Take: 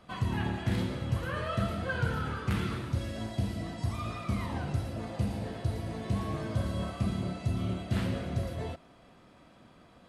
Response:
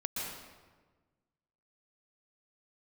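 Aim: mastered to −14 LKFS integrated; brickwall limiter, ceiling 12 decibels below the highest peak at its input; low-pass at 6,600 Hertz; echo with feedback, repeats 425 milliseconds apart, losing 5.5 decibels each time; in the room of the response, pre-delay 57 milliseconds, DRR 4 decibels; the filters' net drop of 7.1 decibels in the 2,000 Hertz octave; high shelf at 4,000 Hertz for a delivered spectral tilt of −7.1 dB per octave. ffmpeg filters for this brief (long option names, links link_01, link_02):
-filter_complex "[0:a]lowpass=6600,equalizer=frequency=2000:width_type=o:gain=-8.5,highshelf=frequency=4000:gain=-7.5,alimiter=level_in=6dB:limit=-24dB:level=0:latency=1,volume=-6dB,aecho=1:1:425|850|1275|1700|2125|2550|2975:0.531|0.281|0.149|0.079|0.0419|0.0222|0.0118,asplit=2[link_01][link_02];[1:a]atrim=start_sample=2205,adelay=57[link_03];[link_02][link_03]afir=irnorm=-1:irlink=0,volume=-7.5dB[link_04];[link_01][link_04]amix=inputs=2:normalize=0,volume=22.5dB"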